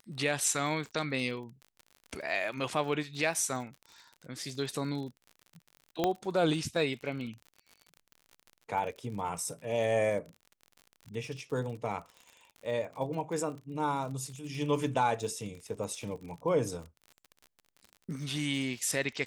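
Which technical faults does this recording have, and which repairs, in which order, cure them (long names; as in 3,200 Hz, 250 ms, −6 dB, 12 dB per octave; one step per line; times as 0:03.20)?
surface crackle 49 per second −40 dBFS
0:06.04: click −14 dBFS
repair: click removal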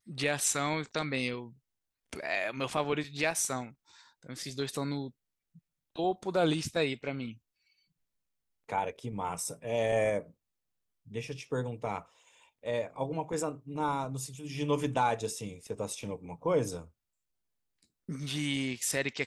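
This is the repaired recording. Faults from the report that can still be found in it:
none of them is left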